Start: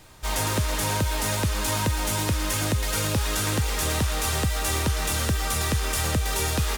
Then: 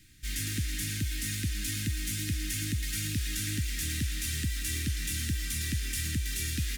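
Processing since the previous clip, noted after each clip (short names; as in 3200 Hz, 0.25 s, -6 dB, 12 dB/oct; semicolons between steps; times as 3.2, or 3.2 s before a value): elliptic band-stop 300–1800 Hz, stop band 80 dB; gain -6 dB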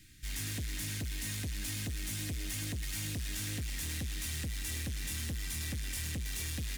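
soft clip -34 dBFS, distortion -10 dB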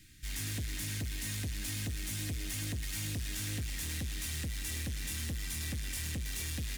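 reverb RT60 1.4 s, pre-delay 13 ms, DRR 18 dB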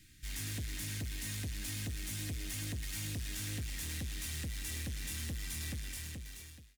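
ending faded out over 1.10 s; gain -2.5 dB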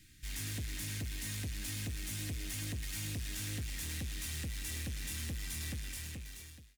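rattling part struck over -44 dBFS, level -47 dBFS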